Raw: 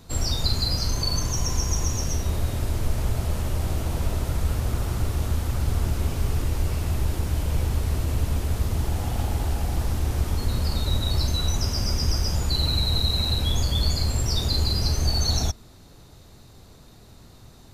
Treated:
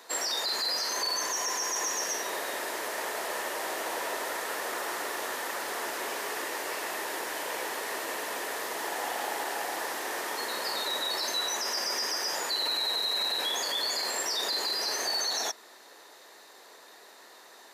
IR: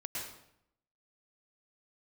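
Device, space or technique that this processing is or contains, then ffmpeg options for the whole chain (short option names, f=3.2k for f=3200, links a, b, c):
laptop speaker: -af "highpass=f=410:w=0.5412,highpass=f=410:w=1.3066,equalizer=f=970:t=o:w=0.32:g=5,equalizer=f=1.8k:t=o:w=0.33:g=11.5,alimiter=limit=-24dB:level=0:latency=1:release=14,volume=2dB"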